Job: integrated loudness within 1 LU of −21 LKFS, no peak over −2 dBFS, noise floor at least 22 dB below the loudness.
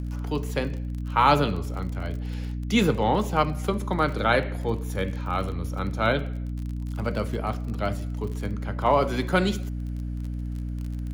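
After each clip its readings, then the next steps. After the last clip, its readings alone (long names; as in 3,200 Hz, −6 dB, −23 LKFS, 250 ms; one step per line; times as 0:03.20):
crackle rate 32 per second; mains hum 60 Hz; hum harmonics up to 300 Hz; level of the hum −28 dBFS; integrated loudness −26.5 LKFS; sample peak −6.0 dBFS; target loudness −21.0 LKFS
→ click removal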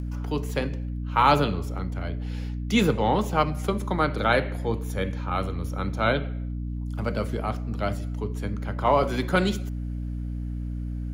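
crackle rate 0.27 per second; mains hum 60 Hz; hum harmonics up to 300 Hz; level of the hum −28 dBFS
→ hum removal 60 Hz, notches 5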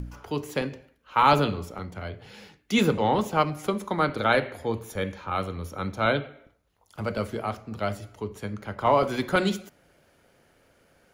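mains hum none found; integrated loudness −27.0 LKFS; sample peak −6.5 dBFS; target loudness −21.0 LKFS
→ level +6 dB
brickwall limiter −2 dBFS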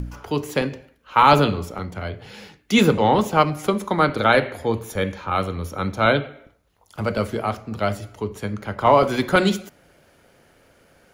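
integrated loudness −21.0 LKFS; sample peak −2.0 dBFS; background noise floor −59 dBFS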